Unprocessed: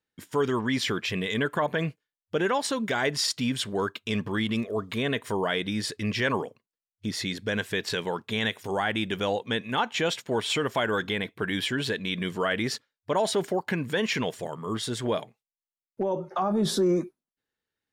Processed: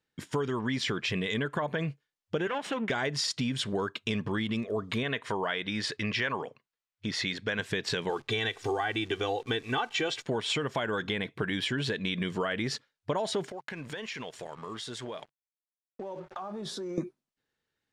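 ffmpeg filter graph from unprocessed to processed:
-filter_complex "[0:a]asettb=1/sr,asplit=3[s0][s1][s2];[s0]atrim=end=2.474[s3];[s1]atrim=start=2.47:end=2.9,asetpts=PTS-STARTPTS,afade=t=in:d=0.004:c=qsin,afade=t=out:st=0.426:d=0.004:c=qsin,aeval=exprs='if(lt(val(0),0),0.251*val(0),val(0))':c=same,highpass=f=170:w=0.5412,highpass=f=170:w=1.3066,highshelf=f=3500:t=q:w=3:g=-6.5[s4];[s2]atrim=start=2.896[s5];[s3][s4]acrossfade=d=0.004:c1=hsin:c2=qsin[s6];[s6][s5]acrossfade=d=0.004:c1=qsin:c2=hsin,asettb=1/sr,asplit=3[s7][s8][s9];[s7]atrim=end=5.034[s10];[s8]atrim=start=5.03:end=7.59,asetpts=PTS-STARTPTS,afade=t=in:d=0.004:c=qsin,afade=t=out:st=2.556:d=0.004:c=qsin,lowpass=f=1800:p=1,tiltshelf=f=770:g=-7[s11];[s9]atrim=start=7.586[s12];[s10][s11]acrossfade=d=0.004:c1=hsin:c2=qsin[s13];[s13][s12]acrossfade=d=0.004:c1=qsin:c2=hsin,asettb=1/sr,asplit=3[s14][s15][s16];[s14]atrim=end=8.094[s17];[s15]atrim=start=8.09:end=10.26,asetpts=PTS-STARTPTS,afade=t=in:d=0.004:c=qsin,afade=t=out:st=2.166:d=0.004:c=qsin,lowpass=10000,aecho=1:1:2.6:0.83,atrim=end_sample=95697,acrusher=bits=9:dc=4:mix=0:aa=0.000001[s18];[s16]atrim=start=10.256[s19];[s17][s18]acrossfade=d=0.004:c1=hsin:c2=qsin[s20];[s20][s19]acrossfade=d=0.004:c1=qsin:c2=hsin,asettb=1/sr,asplit=3[s21][s22][s23];[s21]atrim=end=13.504[s24];[s22]atrim=start=13.5:end=16.98,asetpts=PTS-STARTPTS,afade=t=in:d=0.004:c=qsin,afade=t=out:st=3.476:d=0.004:c=qsin,lowshelf=f=320:g=-11,aeval=exprs='sgn(val(0))*max(abs(val(0))-0.00237,0)':c=same,acompressor=threshold=0.0112:ratio=6:attack=3.2:release=140:knee=1:detection=peak[s25];[s23]atrim=start=16.976[s26];[s24][s25]acrossfade=d=0.004:c1=hsin:c2=qsin[s27];[s27][s26]acrossfade=d=0.004:c1=qsin:c2=hsin,lowpass=7600,equalizer=f=140:w=5.2:g=5,acompressor=threshold=0.0282:ratio=6,volume=1.5"

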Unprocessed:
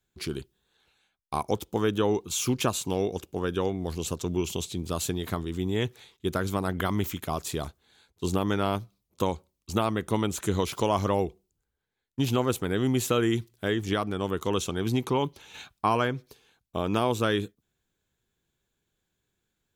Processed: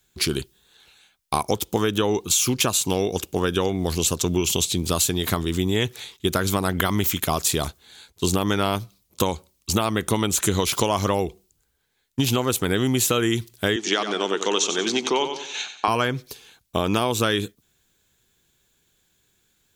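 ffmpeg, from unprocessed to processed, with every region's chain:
-filter_complex "[0:a]asettb=1/sr,asplit=3[s0][s1][s2];[s0]atrim=end=13.764[s3];[s1]atrim=start=13.76:end=15.88,asetpts=PTS-STARTPTS,afade=t=in:d=0.004:c=qsin,afade=t=out:st=2.116:d=0.004:c=qsin,highpass=f=260:w=0.5412,highpass=f=260:w=1.3066,equalizer=f=270:t=q:w=4:g=-6,equalizer=f=540:t=q:w=4:g=-4,equalizer=f=1100:t=q:w=4:g=-4,equalizer=f=6300:t=q:w=4:g=4,lowpass=f=6800:w=0.5412,lowpass=f=6800:w=1.3066,aecho=1:1:92|184|276|368:0.316|0.12|0.0457|0.0174,atrim=end_sample=93492[s4];[s2]atrim=start=15.876[s5];[s3][s4]acrossfade=d=0.004:c1=hsin:c2=qsin[s6];[s6][s5]acrossfade=d=0.004:c1=qsin:c2=hsin,highshelf=f=2200:g=9,acompressor=threshold=0.0501:ratio=6,volume=2.66"

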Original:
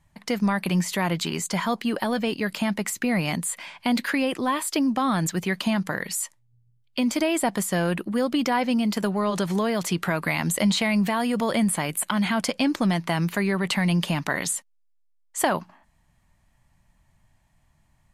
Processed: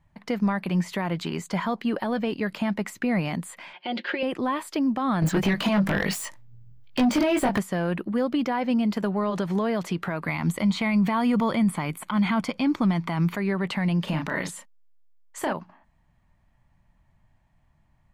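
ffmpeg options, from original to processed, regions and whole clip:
-filter_complex "[0:a]asettb=1/sr,asplit=3[s0][s1][s2];[s0]atrim=end=3.734[s3];[s1]atrim=start=3.73:end=4.23,asetpts=PTS-STARTPTS,afade=t=in:d=0.004:c=qsin,afade=t=out:st=0.496:d=0.004:c=qsin,highpass=300,equalizer=f=380:t=q:w=4:g=9,equalizer=f=580:t=q:w=4:g=4,equalizer=f=1100:t=q:w=4:g=-6,equalizer=f=3100:t=q:w=4:g=9,lowpass=f=5100:w=0.5412,lowpass=f=5100:w=1.3066,aecho=1:1:5.6:0.67,atrim=end_sample=22050[s4];[s2]atrim=start=4.226[s5];[s3][s4]acrossfade=d=0.004:c1=hsin:c2=qsin[s6];[s6][s5]acrossfade=d=0.004:c1=qsin:c2=hsin,asettb=1/sr,asplit=3[s7][s8][s9];[s7]atrim=end=5.224[s10];[s8]atrim=start=5.22:end=7.59,asetpts=PTS-STARTPTS,afade=t=in:d=0.004:c=qsin,afade=t=out:st=2.366:d=0.004:c=qsin,acompressor=threshold=0.0355:ratio=12:attack=3.2:release=140:knee=1:detection=peak,asplit=2[s11][s12];[s12]adelay=20,volume=0.668[s13];[s11][s13]amix=inputs=2:normalize=0,atrim=end_sample=104517,aeval=exprs='0.15*sin(PI/2*3.16*val(0)/0.15)':c=same[s14];[s9]atrim=start=7.586[s15];[s10][s14]acrossfade=d=0.004:c1=hsin:c2=qsin[s16];[s16][s15]acrossfade=d=0.004:c1=qsin:c2=hsin,asettb=1/sr,asplit=3[s17][s18][s19];[s17]atrim=end=10.284[s20];[s18]atrim=start=10.28:end=13.36,asetpts=PTS-STARTPTS,afade=t=in:d=0.004:c=qsin,afade=t=out:st=3.076:d=0.004:c=qsin,aecho=1:1:0.9:0.38,atrim=end_sample=135828,acontrast=26[s21];[s19]atrim=start=13.356[s22];[s20][s21]acrossfade=d=0.004:c1=hsin:c2=qsin[s23];[s23][s22]acrossfade=d=0.004:c1=qsin:c2=hsin,asettb=1/sr,asplit=3[s24][s25][s26];[s24]atrim=end=14.044[s27];[s25]atrim=start=14.04:end=15.53,asetpts=PTS-STARTPTS,afade=t=in:d=0.004:c=qsin,afade=t=out:st=1.486:d=0.004:c=qsin,acontrast=27,bandreject=f=730:w=8.8,asplit=2[s28][s29];[s29]adelay=32,volume=0.562[s30];[s28][s30]amix=inputs=2:normalize=0,atrim=end_sample=65709[s31];[s26]atrim=start=15.526[s32];[s27][s31]acrossfade=d=0.004:c1=hsin:c2=qsin[s33];[s33][s32]acrossfade=d=0.004:c1=qsin:c2=hsin,alimiter=limit=0.168:level=0:latency=1:release=141,equalizer=f=10000:t=o:w=2.2:g=-14.5"

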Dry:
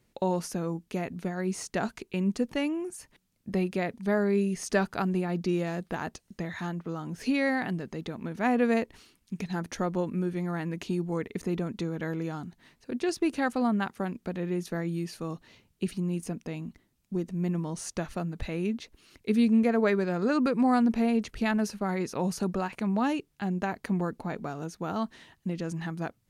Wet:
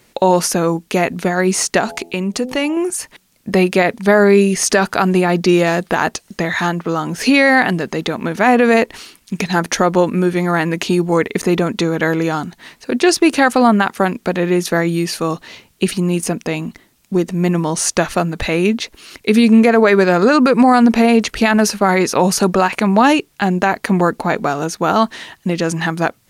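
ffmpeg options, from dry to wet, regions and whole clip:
-filter_complex "[0:a]asettb=1/sr,asplit=3[s0][s1][s2];[s0]atrim=end=1.804[s3];[s1]atrim=start=1.8:end=2.77,asetpts=PTS-STARTPTS,afade=t=in:d=0.004:c=qsin,afade=t=out:st=0.966:d=0.004:c=qsin,bandreject=f=84.83:t=h:w=4,bandreject=f=169.66:t=h:w=4,bandreject=f=254.49:t=h:w=4,bandreject=f=339.32:t=h:w=4,bandreject=f=424.15:t=h:w=4,bandreject=f=508.98:t=h:w=4,bandreject=f=593.81:t=h:w=4,bandreject=f=678.64:t=h:w=4,bandreject=f=763.47:t=h:w=4,bandreject=f=848.3:t=h:w=4,acompressor=threshold=0.0178:ratio=2:attack=3.2:release=140:knee=1:detection=peak,equalizer=f=1600:t=o:w=0.4:g=-3.5[s4];[s2]atrim=start=2.766[s5];[s3][s4]acrossfade=d=0.004:c1=hsin:c2=qsin[s6];[s6][s5]acrossfade=d=0.004:c1=qsin:c2=hsin,lowshelf=f=280:g=-12,alimiter=level_in=13.3:limit=0.891:release=50:level=0:latency=1,volume=0.841"

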